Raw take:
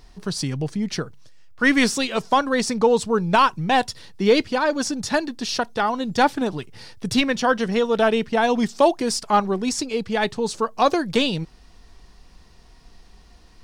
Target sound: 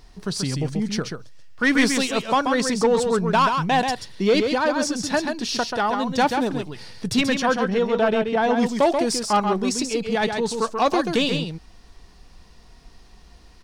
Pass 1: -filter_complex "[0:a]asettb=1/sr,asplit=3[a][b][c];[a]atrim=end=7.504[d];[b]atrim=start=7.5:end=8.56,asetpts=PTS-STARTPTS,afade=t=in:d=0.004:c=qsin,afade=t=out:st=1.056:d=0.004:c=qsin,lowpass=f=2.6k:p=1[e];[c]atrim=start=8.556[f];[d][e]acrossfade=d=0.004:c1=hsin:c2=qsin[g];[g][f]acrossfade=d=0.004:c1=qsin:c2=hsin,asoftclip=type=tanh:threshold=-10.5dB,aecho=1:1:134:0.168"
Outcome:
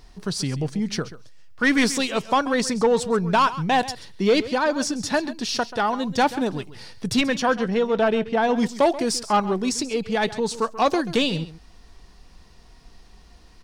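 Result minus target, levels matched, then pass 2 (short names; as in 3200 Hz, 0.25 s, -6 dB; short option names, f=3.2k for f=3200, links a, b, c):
echo-to-direct -10 dB
-filter_complex "[0:a]asettb=1/sr,asplit=3[a][b][c];[a]atrim=end=7.504[d];[b]atrim=start=7.5:end=8.56,asetpts=PTS-STARTPTS,afade=t=in:d=0.004:c=qsin,afade=t=out:st=1.056:d=0.004:c=qsin,lowpass=f=2.6k:p=1[e];[c]atrim=start=8.556[f];[d][e]acrossfade=d=0.004:c1=hsin:c2=qsin[g];[g][f]acrossfade=d=0.004:c1=qsin:c2=hsin,asoftclip=type=tanh:threshold=-10.5dB,aecho=1:1:134:0.531"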